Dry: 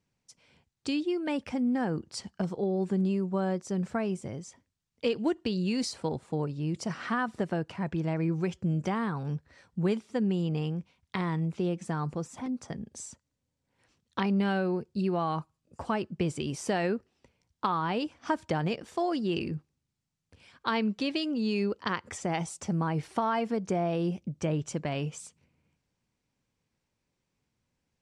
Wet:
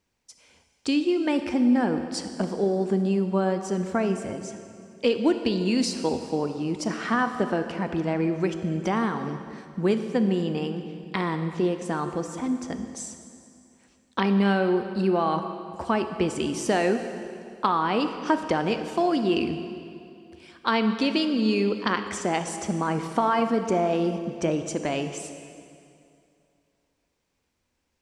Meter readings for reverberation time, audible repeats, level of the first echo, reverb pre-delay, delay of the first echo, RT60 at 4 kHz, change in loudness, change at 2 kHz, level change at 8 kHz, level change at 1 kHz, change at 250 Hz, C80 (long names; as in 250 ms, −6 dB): 2.5 s, no echo audible, no echo audible, 24 ms, no echo audible, 2.2 s, +5.5 dB, +6.0 dB, +6.0 dB, +6.5 dB, +5.5 dB, 9.0 dB